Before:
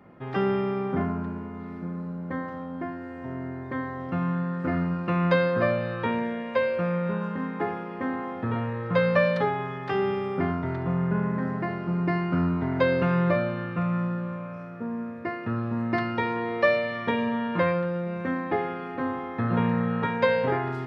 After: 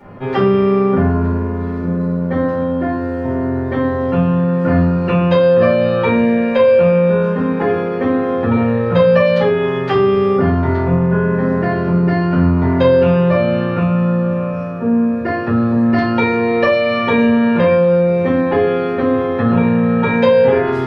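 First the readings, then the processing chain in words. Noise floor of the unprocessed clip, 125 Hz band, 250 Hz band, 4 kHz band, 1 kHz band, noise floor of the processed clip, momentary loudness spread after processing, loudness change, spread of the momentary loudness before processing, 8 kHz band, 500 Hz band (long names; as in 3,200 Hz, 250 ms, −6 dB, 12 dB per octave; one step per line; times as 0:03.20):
−37 dBFS, +12.0 dB, +13.0 dB, +11.0 dB, +9.0 dB, −21 dBFS, 7 LU, +12.5 dB, 11 LU, can't be measured, +14.0 dB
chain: dynamic equaliser 3,000 Hz, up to +5 dB, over −53 dBFS, Q 4.2
downward compressor 4 to 1, threshold −27 dBFS, peak gain reduction 9.5 dB
rectangular room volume 140 cubic metres, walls furnished, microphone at 4.5 metres
level +5.5 dB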